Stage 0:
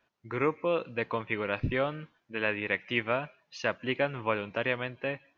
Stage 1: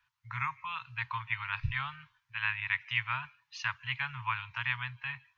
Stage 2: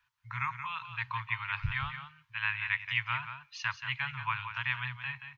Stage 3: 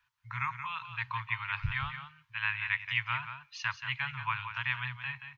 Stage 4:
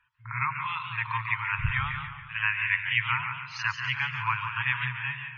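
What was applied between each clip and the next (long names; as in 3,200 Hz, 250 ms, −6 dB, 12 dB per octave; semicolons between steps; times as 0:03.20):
Chebyshev band-stop filter 130–940 Hz, order 4
single-tap delay 178 ms −9 dB
no processing that can be heard
spectral peaks only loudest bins 64; backwards echo 54 ms −10.5 dB; feedback echo with a swinging delay time 142 ms, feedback 54%, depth 129 cents, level −9 dB; level +5 dB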